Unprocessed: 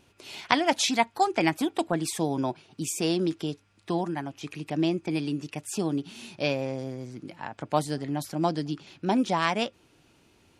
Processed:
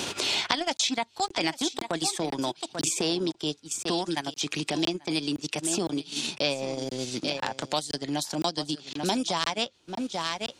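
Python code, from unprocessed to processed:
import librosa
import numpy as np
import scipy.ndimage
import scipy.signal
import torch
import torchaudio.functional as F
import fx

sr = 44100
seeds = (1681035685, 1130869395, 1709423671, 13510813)

y = fx.low_shelf(x, sr, hz=190.0, db=-9.5)
y = y + 10.0 ** (-14.0 / 20.0) * np.pad(y, (int(840 * sr / 1000.0), 0))[:len(y)]
y = fx.transient(y, sr, attack_db=-7, sustain_db=-11)
y = fx.band_shelf(y, sr, hz=5300.0, db=9.5, octaves=1.7)
y = fx.buffer_crackle(y, sr, first_s=0.77, period_s=0.51, block=1024, kind='zero')
y = fx.band_squash(y, sr, depth_pct=100)
y = y * 10.0 ** (1.0 / 20.0)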